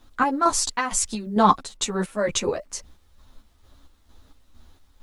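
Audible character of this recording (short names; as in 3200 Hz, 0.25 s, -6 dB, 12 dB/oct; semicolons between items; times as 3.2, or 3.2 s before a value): chopped level 2.2 Hz, depth 60%, duty 50%; a quantiser's noise floor 12-bit, dither none; a shimmering, thickened sound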